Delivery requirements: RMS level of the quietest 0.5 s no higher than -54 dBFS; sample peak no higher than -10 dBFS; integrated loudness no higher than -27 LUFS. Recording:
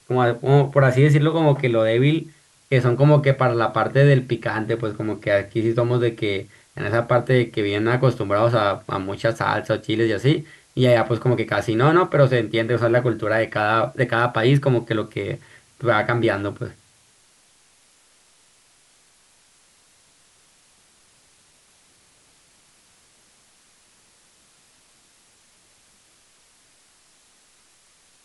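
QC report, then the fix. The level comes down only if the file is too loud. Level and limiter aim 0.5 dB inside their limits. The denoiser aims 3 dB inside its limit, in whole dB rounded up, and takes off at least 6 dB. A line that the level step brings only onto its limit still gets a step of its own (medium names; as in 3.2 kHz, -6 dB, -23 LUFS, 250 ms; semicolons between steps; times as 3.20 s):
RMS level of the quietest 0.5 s -57 dBFS: pass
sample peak -4.5 dBFS: fail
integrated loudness -20.0 LUFS: fail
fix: trim -7.5 dB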